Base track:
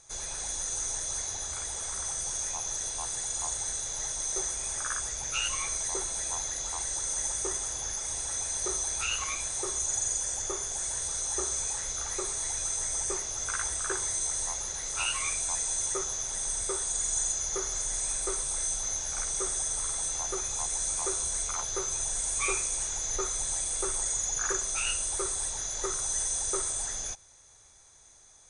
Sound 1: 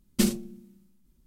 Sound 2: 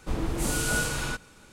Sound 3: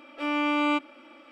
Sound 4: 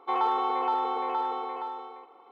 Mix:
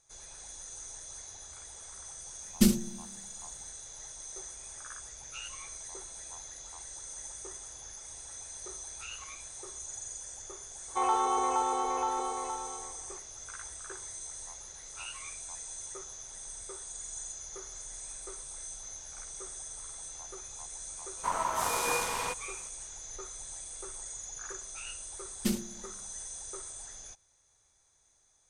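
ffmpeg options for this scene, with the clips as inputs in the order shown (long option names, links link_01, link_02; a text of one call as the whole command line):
ffmpeg -i bed.wav -i cue0.wav -i cue1.wav -i cue2.wav -i cue3.wav -filter_complex "[1:a]asplit=2[link_01][link_02];[0:a]volume=-12dB[link_03];[link_01]bass=frequency=250:gain=7,treble=frequency=4000:gain=4[link_04];[4:a]asplit=2[link_05][link_06];[link_06]adelay=46,volume=-12.5dB[link_07];[link_05][link_07]amix=inputs=2:normalize=0[link_08];[2:a]aeval=exprs='val(0)*sin(2*PI*980*n/s)':channel_layout=same[link_09];[link_04]atrim=end=1.26,asetpts=PTS-STARTPTS,volume=-3.5dB,afade=type=in:duration=0.004:curve=hsin,afade=type=out:start_time=1.256:duration=0.004:curve=hsin,adelay=2420[link_10];[link_08]atrim=end=2.31,asetpts=PTS-STARTPTS,volume=-2dB,afade=type=in:duration=0.004:curve=hsin,afade=type=out:start_time=2.306:duration=0.004:curve=hsin,adelay=10880[link_11];[link_09]atrim=end=1.52,asetpts=PTS-STARTPTS,volume=-1dB,afade=type=in:duration=0.004:curve=hsin,afade=type=out:start_time=1.516:duration=0.004:curve=hsin,adelay=21170[link_12];[link_02]atrim=end=1.26,asetpts=PTS-STARTPTS,volume=-7dB,afade=type=in:duration=0.004:curve=hsin,afade=type=out:start_time=1.256:duration=0.004:curve=hsin,adelay=25260[link_13];[link_03][link_10][link_11][link_12][link_13]amix=inputs=5:normalize=0" out.wav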